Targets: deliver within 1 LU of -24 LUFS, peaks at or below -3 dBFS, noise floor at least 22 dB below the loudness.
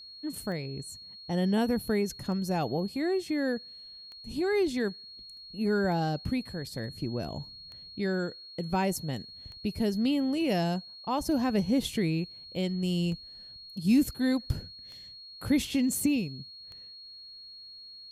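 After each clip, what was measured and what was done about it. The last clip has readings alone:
clicks found 10; steady tone 4.3 kHz; tone level -45 dBFS; loudness -30.5 LUFS; peak level -15.0 dBFS; loudness target -24.0 LUFS
-> de-click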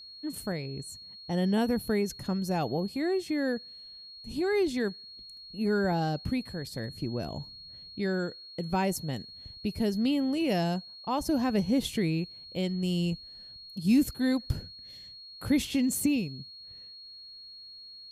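clicks found 0; steady tone 4.3 kHz; tone level -45 dBFS
-> band-stop 4.3 kHz, Q 30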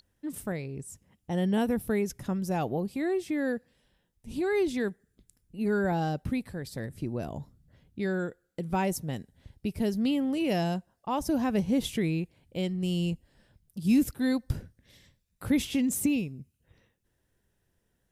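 steady tone not found; loudness -30.5 LUFS; peak level -15.5 dBFS; loudness target -24.0 LUFS
-> trim +6.5 dB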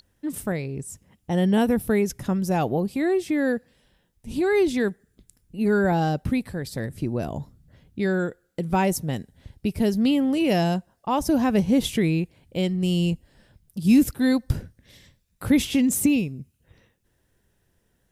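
loudness -24.0 LUFS; peak level -9.0 dBFS; noise floor -69 dBFS

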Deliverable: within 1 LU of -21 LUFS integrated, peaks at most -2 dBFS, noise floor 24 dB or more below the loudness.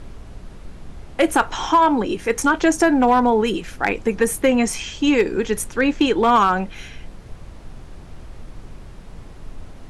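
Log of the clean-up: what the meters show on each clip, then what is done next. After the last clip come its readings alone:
clipped samples 0.5%; clipping level -8.0 dBFS; noise floor -39 dBFS; noise floor target -43 dBFS; loudness -18.5 LUFS; peak level -8.0 dBFS; loudness target -21.0 LUFS
-> clip repair -8 dBFS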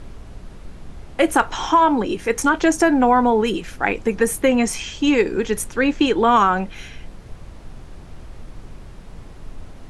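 clipped samples 0.0%; noise floor -39 dBFS; noise floor target -43 dBFS
-> noise print and reduce 6 dB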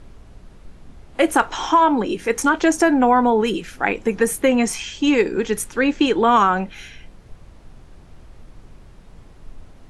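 noise floor -45 dBFS; loudness -18.5 LUFS; peak level -3.5 dBFS; loudness target -21.0 LUFS
-> trim -2.5 dB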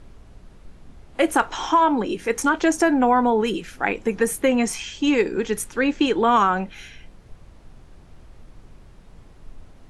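loudness -21.0 LUFS; peak level -6.0 dBFS; noise floor -48 dBFS

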